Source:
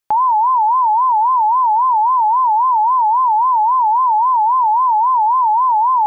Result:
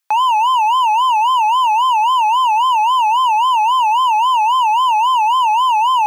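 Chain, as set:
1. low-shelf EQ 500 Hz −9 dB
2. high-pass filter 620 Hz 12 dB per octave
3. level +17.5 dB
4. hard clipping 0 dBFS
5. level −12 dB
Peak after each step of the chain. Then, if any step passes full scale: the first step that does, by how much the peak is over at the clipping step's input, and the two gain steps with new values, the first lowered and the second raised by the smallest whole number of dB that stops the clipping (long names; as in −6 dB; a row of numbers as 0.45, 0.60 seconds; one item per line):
−12.0, −10.0, +7.5, 0.0, −12.0 dBFS
step 3, 7.5 dB
step 3 +9.5 dB, step 5 −4 dB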